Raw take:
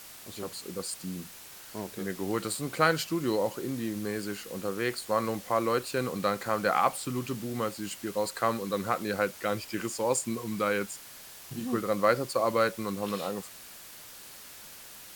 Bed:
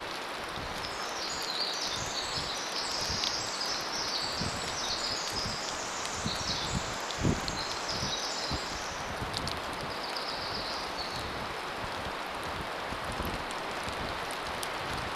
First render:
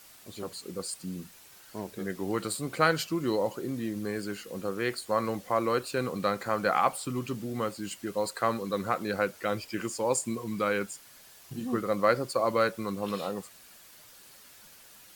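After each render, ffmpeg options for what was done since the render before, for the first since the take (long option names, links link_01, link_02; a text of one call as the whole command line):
ffmpeg -i in.wav -af "afftdn=noise_reduction=7:noise_floor=-48" out.wav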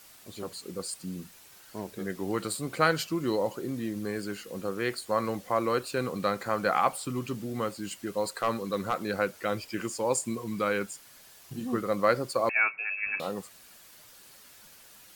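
ffmpeg -i in.wav -filter_complex "[0:a]asettb=1/sr,asplit=3[link_01][link_02][link_03];[link_01]atrim=end=8.364[link_04];[link_02]atrim=start=8.36:end=9.04,asetpts=PTS-STARTPTS,afade=type=in:duration=0.004:curve=qsin,afade=type=out:start_time=0.676:duration=0.004:curve=qsin,asoftclip=type=hard:threshold=-18.5dB[link_05];[link_03]atrim=start=9.036[link_06];[link_04][link_05]acrossfade=duration=0.004:curve1=hsin:curve2=qsin[link_07];[link_07][link_06]acrossfade=duration=0.004:curve1=qsin:curve2=hsin,asettb=1/sr,asplit=3[link_08][link_09][link_10];[link_08]atrim=end=12.494[link_11];[link_09]atrim=start=12.49:end=13.2,asetpts=PTS-STARTPTS,afade=type=in:duration=0.004:curve=qsin,afade=type=out:start_time=0.706:duration=0.004:curve=qsin,lowpass=frequency=2400:width_type=q:width=0.5098,lowpass=frequency=2400:width_type=q:width=0.6013,lowpass=frequency=2400:width_type=q:width=0.9,lowpass=frequency=2400:width_type=q:width=2.563,afreqshift=-2800[link_12];[link_10]atrim=start=13.196[link_13];[link_11][link_12]acrossfade=duration=0.004:curve1=hsin:curve2=qsin[link_14];[link_14][link_13]acrossfade=duration=0.004:curve1=qsin:curve2=hsin" out.wav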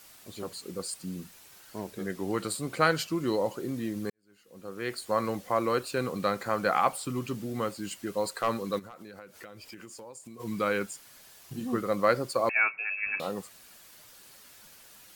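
ffmpeg -i in.wav -filter_complex "[0:a]asettb=1/sr,asplit=3[link_01][link_02][link_03];[link_01]atrim=end=1.904[link_04];[link_02]atrim=start=1.9:end=3.6,asetpts=PTS-STARTPTS,afade=type=in:duration=0.004:curve=qsin,afade=type=out:start_time=1.696:duration=0.004:curve=qsin,equalizer=frequency=15000:width=7.3:gain=-14.5[link_05];[link_03]atrim=start=3.596[link_06];[link_04][link_05]acrossfade=duration=0.004:curve1=hsin:curve2=qsin[link_07];[link_07][link_06]acrossfade=duration=0.004:curve1=qsin:curve2=hsin,asplit=3[link_08][link_09][link_10];[link_08]afade=type=out:start_time=8.78:duration=0.02[link_11];[link_09]acompressor=threshold=-42dB:ratio=12:attack=3.2:release=140:knee=1:detection=peak,afade=type=in:start_time=8.78:duration=0.02,afade=type=out:start_time=10.39:duration=0.02[link_12];[link_10]afade=type=in:start_time=10.39:duration=0.02[link_13];[link_11][link_12][link_13]amix=inputs=3:normalize=0,asplit=2[link_14][link_15];[link_14]atrim=end=4.1,asetpts=PTS-STARTPTS,afade=type=out:start_time=4.096:duration=0.004:curve=hsin[link_16];[link_15]atrim=start=4.1,asetpts=PTS-STARTPTS,afade=type=in:duration=0.94:curve=qua[link_17];[link_16][link_17]concat=n=2:v=0:a=1" out.wav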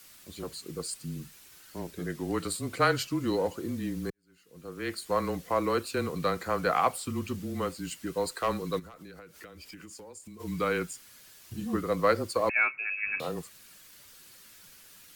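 ffmpeg -i in.wav -filter_complex "[0:a]afreqshift=-24,acrossover=split=380|870|4500[link_01][link_02][link_03][link_04];[link_02]adynamicsmooth=sensitivity=6:basefreq=680[link_05];[link_01][link_05][link_03][link_04]amix=inputs=4:normalize=0" out.wav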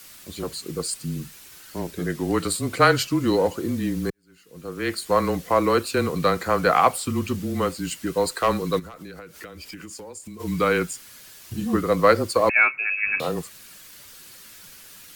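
ffmpeg -i in.wav -af "volume=8dB" out.wav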